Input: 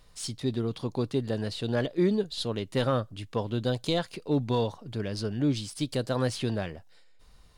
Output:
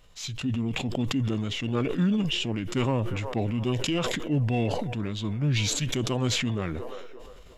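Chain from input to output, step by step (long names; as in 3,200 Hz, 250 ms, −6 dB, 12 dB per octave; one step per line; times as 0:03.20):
delay with a band-pass on its return 351 ms, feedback 63%, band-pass 980 Hz, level −18.5 dB
formants moved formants −5 semitones
level that may fall only so fast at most 23 dB per second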